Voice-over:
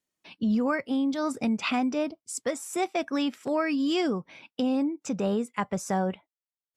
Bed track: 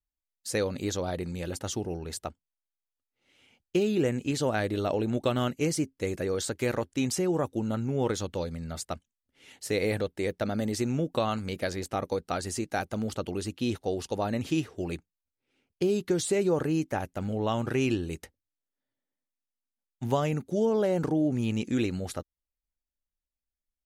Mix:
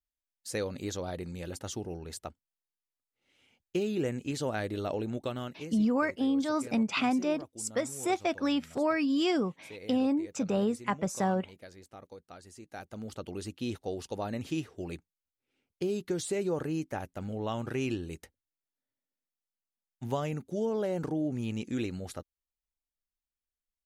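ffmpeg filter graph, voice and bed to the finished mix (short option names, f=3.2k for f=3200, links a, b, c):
-filter_complex "[0:a]adelay=5300,volume=-1.5dB[a];[1:a]volume=8dB,afade=t=out:st=4.98:d=0.8:silence=0.211349,afade=t=in:st=12.57:d=0.87:silence=0.223872[b];[a][b]amix=inputs=2:normalize=0"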